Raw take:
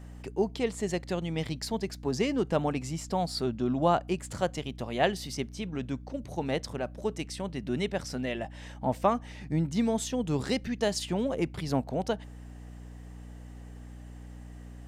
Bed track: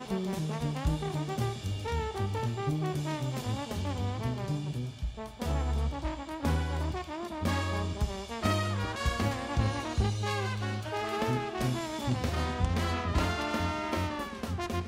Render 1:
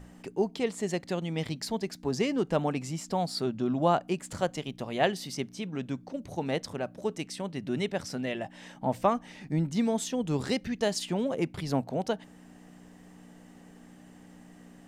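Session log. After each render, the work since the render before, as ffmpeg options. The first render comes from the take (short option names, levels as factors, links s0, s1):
-af "bandreject=f=60:t=h:w=6,bandreject=f=120:t=h:w=6"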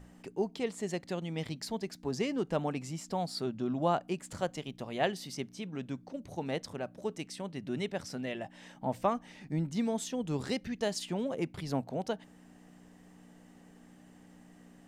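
-af "volume=0.596"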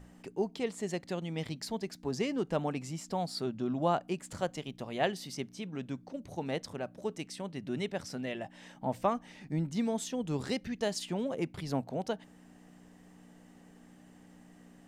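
-af anull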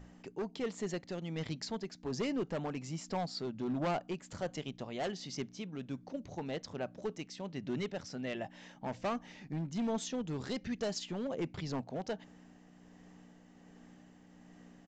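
-af "aresample=16000,volume=29.9,asoftclip=hard,volume=0.0335,aresample=44100,tremolo=f=1.3:d=0.31"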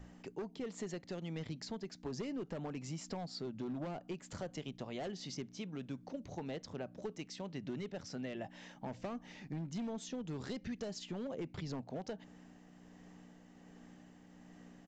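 -filter_complex "[0:a]acrossover=split=500[s0][s1];[s1]alimiter=level_in=3.76:limit=0.0631:level=0:latency=1:release=240,volume=0.266[s2];[s0][s2]amix=inputs=2:normalize=0,acompressor=threshold=0.0126:ratio=6"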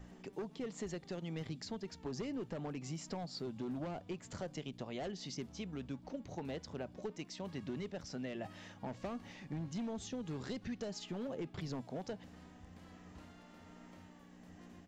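-filter_complex "[1:a]volume=0.0335[s0];[0:a][s0]amix=inputs=2:normalize=0"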